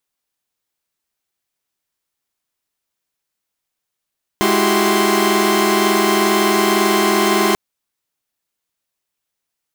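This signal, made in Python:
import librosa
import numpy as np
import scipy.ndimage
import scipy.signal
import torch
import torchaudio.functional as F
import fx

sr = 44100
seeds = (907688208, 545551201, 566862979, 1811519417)

y = fx.chord(sr, length_s=3.14, notes=(56, 64, 66, 67, 84), wave='saw', level_db=-17.0)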